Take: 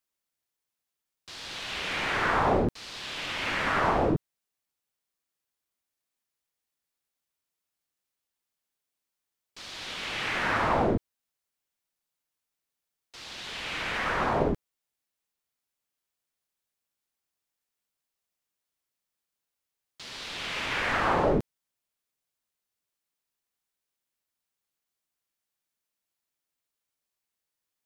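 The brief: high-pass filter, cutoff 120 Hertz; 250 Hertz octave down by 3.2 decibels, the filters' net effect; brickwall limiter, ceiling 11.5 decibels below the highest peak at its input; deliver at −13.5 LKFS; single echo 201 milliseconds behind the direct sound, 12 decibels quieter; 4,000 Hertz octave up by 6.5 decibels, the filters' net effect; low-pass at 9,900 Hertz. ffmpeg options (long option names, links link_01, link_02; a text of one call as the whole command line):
ffmpeg -i in.wav -af "highpass=120,lowpass=9900,equalizer=frequency=250:width_type=o:gain=-4,equalizer=frequency=4000:width_type=o:gain=8.5,alimiter=level_in=0.5dB:limit=-24dB:level=0:latency=1,volume=-0.5dB,aecho=1:1:201:0.251,volume=19dB" out.wav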